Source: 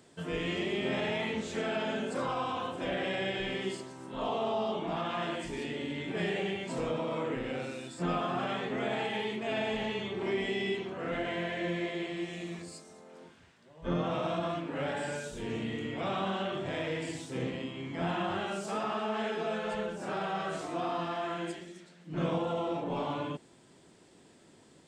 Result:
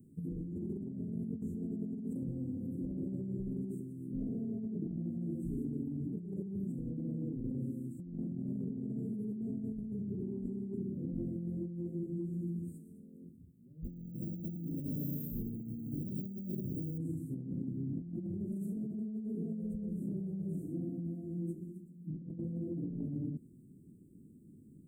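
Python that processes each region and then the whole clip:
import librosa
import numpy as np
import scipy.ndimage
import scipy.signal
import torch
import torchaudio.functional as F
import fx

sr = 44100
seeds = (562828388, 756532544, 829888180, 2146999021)

y = fx.chain(x, sr, fx.resample_bad(factor=2, down='filtered', up='hold'),
    fx.echo_multitap(ms=(123, 128, 167), db=(-17.5, -7.5, -17.5)), at=(13.84, 16.98))
y = scipy.signal.sosfilt(scipy.signal.cheby2(4, 70, [860.0, 4600.0], 'bandstop', fs=sr, output='sos'), y)
y = fx.bass_treble(y, sr, bass_db=-8, treble_db=-5)
y = fx.over_compress(y, sr, threshold_db=-50.0, ratio=-1.0)
y = y * librosa.db_to_amplitude(11.5)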